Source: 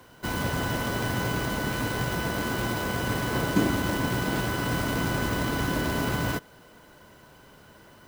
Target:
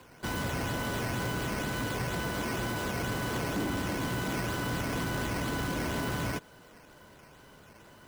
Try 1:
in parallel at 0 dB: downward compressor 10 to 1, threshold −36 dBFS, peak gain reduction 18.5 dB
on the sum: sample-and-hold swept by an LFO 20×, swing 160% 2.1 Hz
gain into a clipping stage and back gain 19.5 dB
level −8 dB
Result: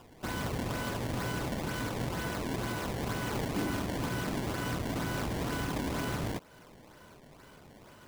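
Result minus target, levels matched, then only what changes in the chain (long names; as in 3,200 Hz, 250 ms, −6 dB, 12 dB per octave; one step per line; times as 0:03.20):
downward compressor: peak gain reduction +7.5 dB; sample-and-hold swept by an LFO: distortion +6 dB
change: downward compressor 10 to 1, threshold −27.5 dBFS, peak gain reduction 11 dB
change: sample-and-hold swept by an LFO 7×, swing 160% 2.1 Hz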